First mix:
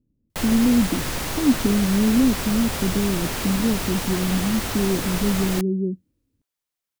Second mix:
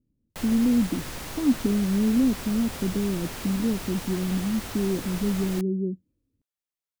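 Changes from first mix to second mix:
speech -3.5 dB; background -9.0 dB

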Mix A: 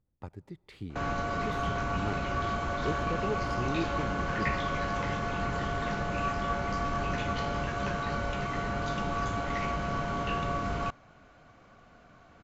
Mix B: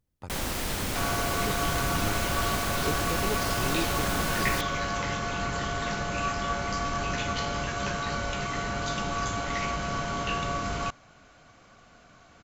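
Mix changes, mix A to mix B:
first sound: unmuted; master: remove low-pass 1.7 kHz 6 dB/octave

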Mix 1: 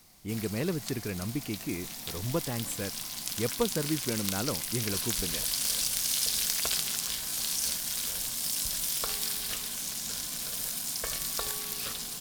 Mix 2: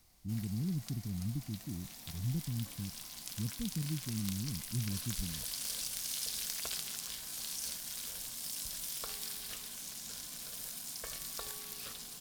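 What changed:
speech: add inverse Chebyshev low-pass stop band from 950 Hz, stop band 70 dB; background -9.5 dB

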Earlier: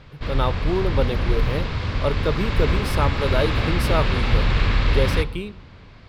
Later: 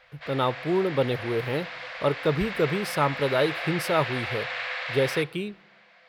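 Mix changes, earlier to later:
speech: send -6.0 dB; background: add rippled Chebyshev high-pass 490 Hz, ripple 9 dB

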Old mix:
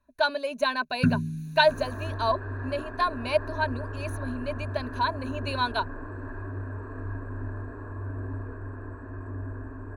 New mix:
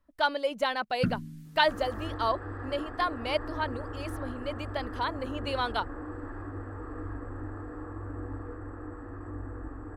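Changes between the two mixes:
first sound -4.0 dB; master: remove rippled EQ curve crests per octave 1.5, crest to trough 14 dB

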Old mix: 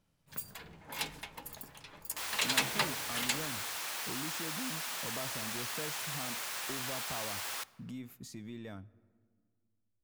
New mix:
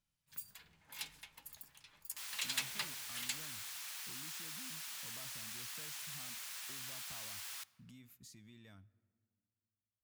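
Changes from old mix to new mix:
speech: add bass shelf 380 Hz +4.5 dB; master: add amplifier tone stack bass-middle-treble 5-5-5

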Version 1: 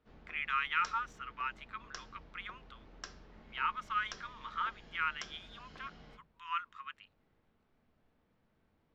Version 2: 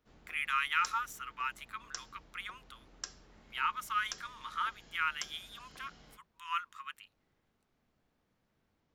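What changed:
background: send -11.5 dB; master: remove distance through air 180 m

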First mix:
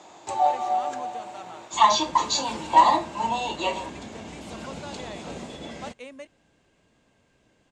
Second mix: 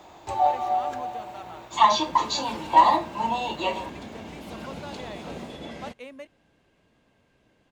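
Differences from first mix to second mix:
first sound: remove high-pass 160 Hz 12 dB/octave; master: remove resonant low-pass 7.8 kHz, resonance Q 2.6

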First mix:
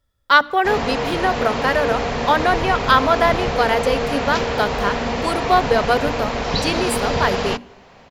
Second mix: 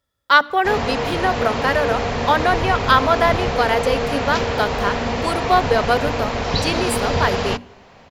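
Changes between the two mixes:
speech: add high-pass 180 Hz 6 dB/octave; background: add peaking EQ 93 Hz +9.5 dB 0.26 oct

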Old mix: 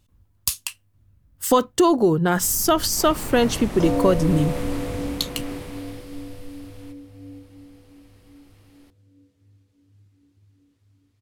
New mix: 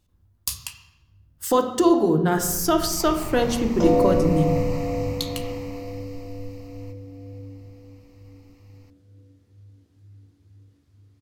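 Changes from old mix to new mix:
speech -5.0 dB; first sound: add static phaser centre 2.3 kHz, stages 8; reverb: on, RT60 1.1 s

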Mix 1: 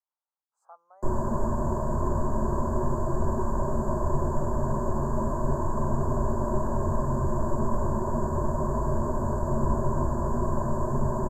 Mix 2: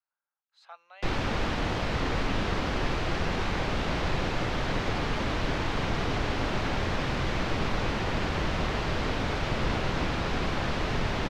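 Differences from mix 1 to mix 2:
background: remove rippled EQ curve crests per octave 1.4, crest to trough 16 dB; master: remove elliptic band-stop 1.1–7.5 kHz, stop band 70 dB

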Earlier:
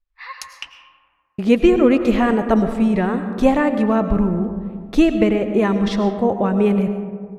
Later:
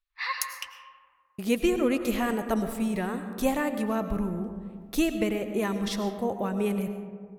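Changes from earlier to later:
speech -12.0 dB; master: remove tape spacing loss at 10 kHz 21 dB

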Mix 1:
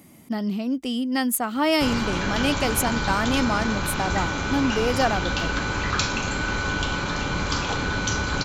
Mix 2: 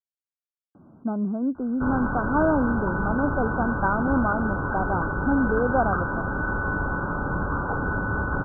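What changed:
speech: entry +0.75 s; master: add brick-wall FIR low-pass 1.6 kHz

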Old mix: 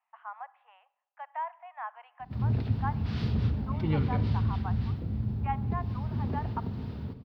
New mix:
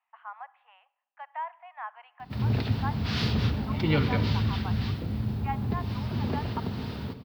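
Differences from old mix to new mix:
background +9.0 dB; master: add tilt EQ +2.5 dB/octave

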